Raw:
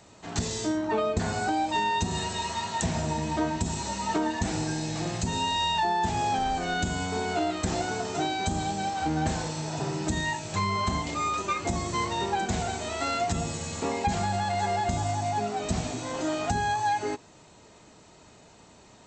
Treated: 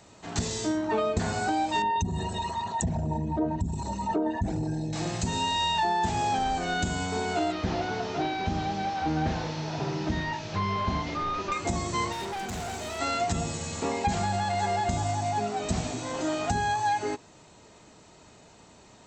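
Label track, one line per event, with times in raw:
1.820000	4.930000	formant sharpening exponent 2
7.520000	11.520000	delta modulation 32 kbps, step -41 dBFS
12.120000	12.990000	overloaded stage gain 32 dB

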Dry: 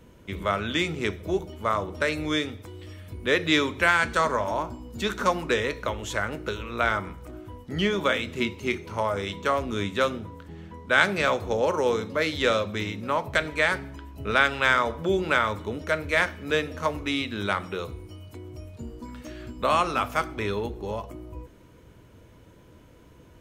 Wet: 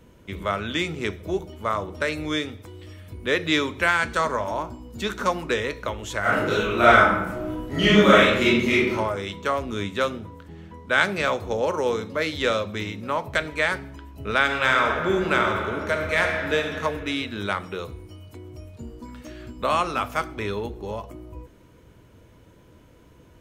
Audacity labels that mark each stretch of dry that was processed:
6.200000	8.920000	reverb throw, RT60 0.87 s, DRR -9.5 dB
14.400000	16.640000	reverb throw, RT60 2.1 s, DRR 2 dB

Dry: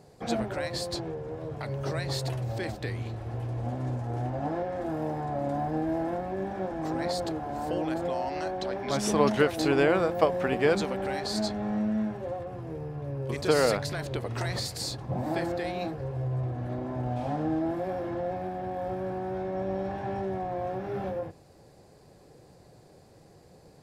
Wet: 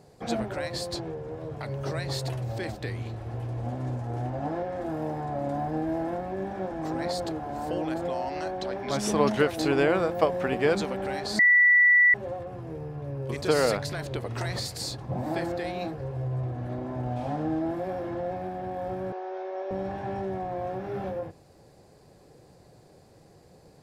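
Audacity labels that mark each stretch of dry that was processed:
11.390000	12.140000	bleep 1960 Hz -15 dBFS
19.120000	19.710000	Chebyshev band-pass 390–6200 Hz, order 4

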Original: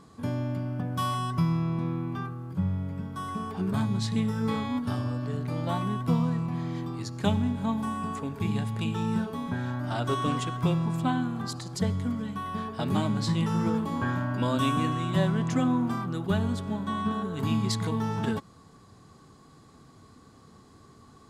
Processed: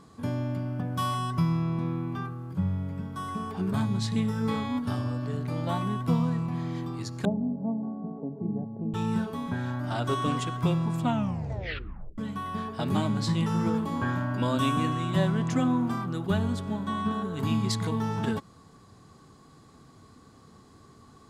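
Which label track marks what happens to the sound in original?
7.250000	8.940000	Chebyshev band-pass 150–700 Hz, order 3
11.010000	11.010000	tape stop 1.17 s

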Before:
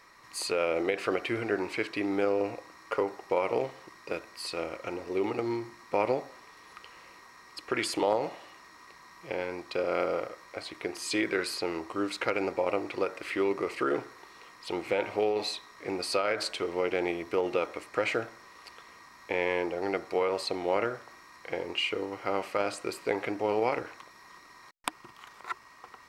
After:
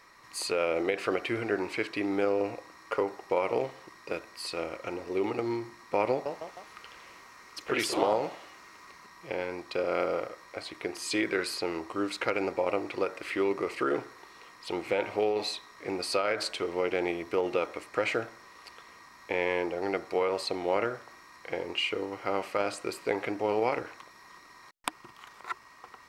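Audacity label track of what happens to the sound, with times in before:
6.100000	9.250000	echoes that change speed 0.156 s, each echo +2 st, echoes 3, each echo -6 dB

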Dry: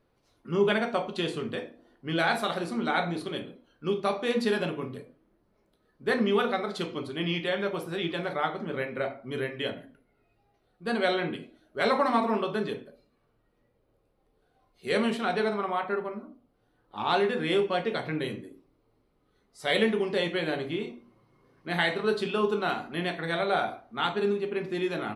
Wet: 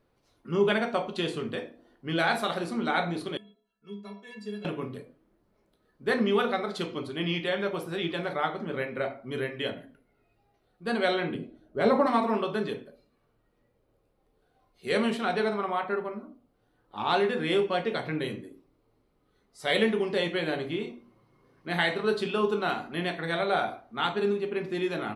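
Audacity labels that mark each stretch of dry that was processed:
3.370000	4.650000	metallic resonator 200 Hz, decay 0.43 s, inharmonicity 0.03
11.340000	12.070000	tilt shelf lows +7.5 dB, about 810 Hz

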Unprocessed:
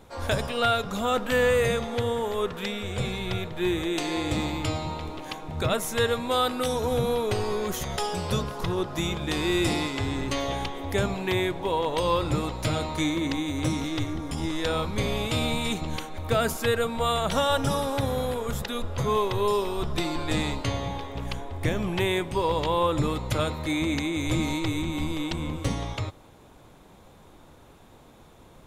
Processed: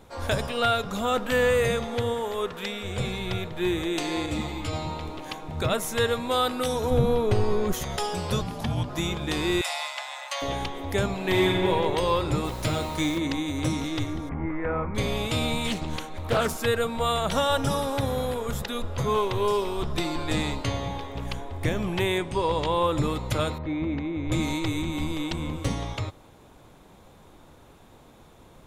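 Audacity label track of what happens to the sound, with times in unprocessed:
2.140000	2.850000	low shelf 250 Hz -6 dB
4.260000	4.730000	ensemble effect
6.900000	7.730000	tilt -2 dB/oct
8.410000	8.890000	frequency shift -250 Hz
9.610000	10.420000	steep high-pass 570 Hz 96 dB/oct
11.160000	11.680000	reverb throw, RT60 2.4 s, DRR -2.5 dB
12.440000	13.170000	added noise pink -44 dBFS
14.290000	14.950000	Chebyshev low-pass 2200 Hz, order 5
15.670000	16.590000	Doppler distortion depth 0.65 ms
19.140000	19.900000	Doppler distortion depth 0.15 ms
22.180000	22.830000	steep low-pass 11000 Hz
23.580000	24.320000	tape spacing loss at 10 kHz 43 dB

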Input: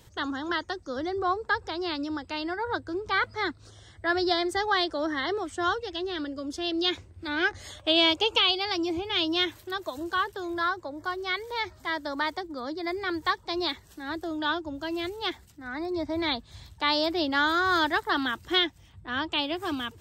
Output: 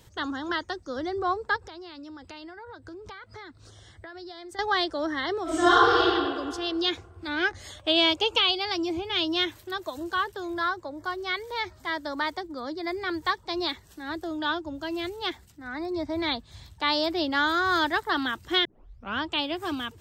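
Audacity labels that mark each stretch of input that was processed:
1.560000	4.590000	compressor 12:1, threshold -39 dBFS
5.430000	6.020000	reverb throw, RT60 1.9 s, DRR -10.5 dB
18.650000	18.650000	tape start 0.54 s

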